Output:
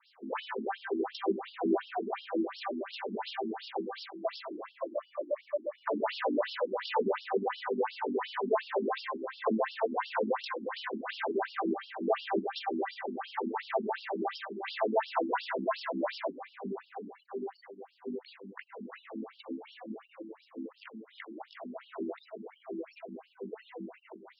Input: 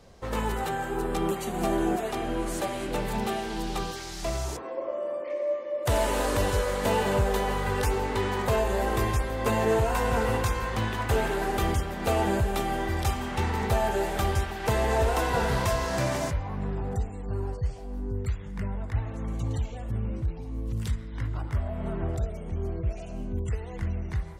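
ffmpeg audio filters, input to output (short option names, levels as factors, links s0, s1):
-af "adynamicequalizer=threshold=0.00562:dfrequency=2900:dqfactor=1.2:tfrequency=2900:tqfactor=1.2:attack=5:release=100:ratio=0.375:range=2:mode=cutabove:tftype=bell,acontrast=71,afftfilt=real='re*between(b*sr/1024,250*pow(4000/250,0.5+0.5*sin(2*PI*2.8*pts/sr))/1.41,250*pow(4000/250,0.5+0.5*sin(2*PI*2.8*pts/sr))*1.41)':imag='im*between(b*sr/1024,250*pow(4000/250,0.5+0.5*sin(2*PI*2.8*pts/sr))/1.41,250*pow(4000/250,0.5+0.5*sin(2*PI*2.8*pts/sr))*1.41)':win_size=1024:overlap=0.75,volume=0.668"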